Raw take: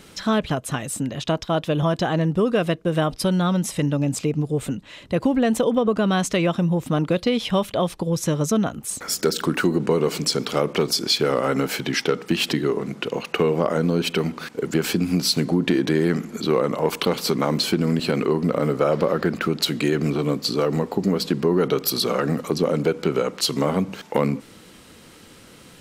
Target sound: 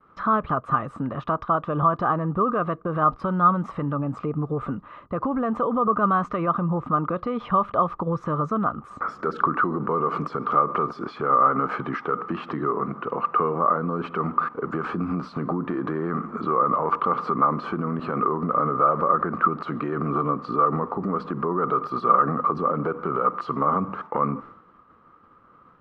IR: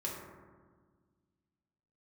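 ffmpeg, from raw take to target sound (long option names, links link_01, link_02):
-af "alimiter=limit=-17.5dB:level=0:latency=1:release=58,agate=range=-33dB:threshold=-38dB:ratio=3:detection=peak,lowpass=frequency=1200:width_type=q:width=14,volume=-1.5dB"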